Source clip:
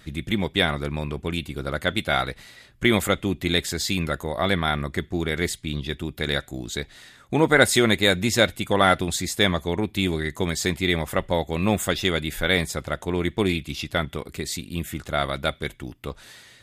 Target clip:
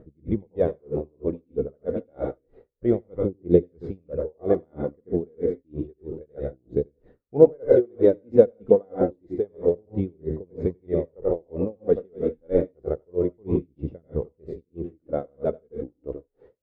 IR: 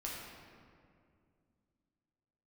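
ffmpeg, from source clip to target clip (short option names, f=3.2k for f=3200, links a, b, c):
-filter_complex "[0:a]lowpass=f=470:t=q:w=4.9,aphaser=in_gain=1:out_gain=1:delay=4.7:decay=0.47:speed=0.29:type=triangular,asplit=2[a][b];[1:a]atrim=start_sample=2205,atrim=end_sample=3528,adelay=88[c];[b][c]afir=irnorm=-1:irlink=0,volume=-2.5dB[d];[a][d]amix=inputs=2:normalize=0,aeval=exprs='val(0)*pow(10,-39*(0.5-0.5*cos(2*PI*3.1*n/s))/20)':c=same,volume=-1dB"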